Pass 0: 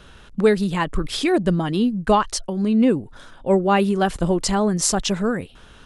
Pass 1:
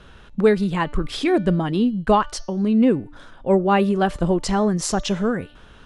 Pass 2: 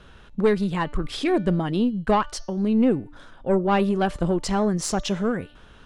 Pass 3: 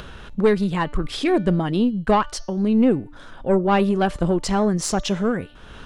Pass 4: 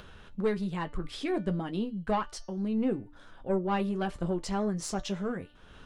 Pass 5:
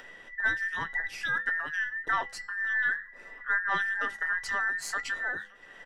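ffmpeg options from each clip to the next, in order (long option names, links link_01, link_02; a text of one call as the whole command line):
ffmpeg -i in.wav -af "aemphasis=mode=reproduction:type=cd,bandreject=frequency=295.2:width_type=h:width=4,bandreject=frequency=590.4:width_type=h:width=4,bandreject=frequency=885.6:width_type=h:width=4,bandreject=frequency=1180.8:width_type=h:width=4,bandreject=frequency=1476:width_type=h:width=4,bandreject=frequency=1771.2:width_type=h:width=4,bandreject=frequency=2066.4:width_type=h:width=4,bandreject=frequency=2361.6:width_type=h:width=4,bandreject=frequency=2656.8:width_type=h:width=4,bandreject=frequency=2952:width_type=h:width=4,bandreject=frequency=3247.2:width_type=h:width=4,bandreject=frequency=3542.4:width_type=h:width=4,bandreject=frequency=3837.6:width_type=h:width=4,bandreject=frequency=4132.8:width_type=h:width=4,bandreject=frequency=4428:width_type=h:width=4,bandreject=frequency=4723.2:width_type=h:width=4,bandreject=frequency=5018.4:width_type=h:width=4,bandreject=frequency=5313.6:width_type=h:width=4,bandreject=frequency=5608.8:width_type=h:width=4,bandreject=frequency=5904:width_type=h:width=4,bandreject=frequency=6199.2:width_type=h:width=4,bandreject=frequency=6494.4:width_type=h:width=4,bandreject=frequency=6789.6:width_type=h:width=4,bandreject=frequency=7084.8:width_type=h:width=4" out.wav
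ffmpeg -i in.wav -af "aeval=exprs='(tanh(2.82*val(0)+0.35)-tanh(0.35))/2.82':channel_layout=same,volume=-1.5dB" out.wav
ffmpeg -i in.wav -af "acompressor=mode=upward:threshold=-32dB:ratio=2.5,volume=2.5dB" out.wav
ffmpeg -i in.wav -af "flanger=delay=9.9:depth=1.4:regen=-48:speed=0.63:shape=sinusoidal,volume=-7.5dB" out.wav
ffmpeg -i in.wav -filter_complex "[0:a]afftfilt=real='real(if(between(b,1,1012),(2*floor((b-1)/92)+1)*92-b,b),0)':imag='imag(if(between(b,1,1012),(2*floor((b-1)/92)+1)*92-b,b),0)*if(between(b,1,1012),-1,1)':win_size=2048:overlap=0.75,asplit=2[link_01][link_02];[link_02]adelay=568,lowpass=frequency=1500:poles=1,volume=-23dB,asplit=2[link_03][link_04];[link_04]adelay=568,lowpass=frequency=1500:poles=1,volume=0.48,asplit=2[link_05][link_06];[link_06]adelay=568,lowpass=frequency=1500:poles=1,volume=0.48[link_07];[link_01][link_03][link_05][link_07]amix=inputs=4:normalize=0" out.wav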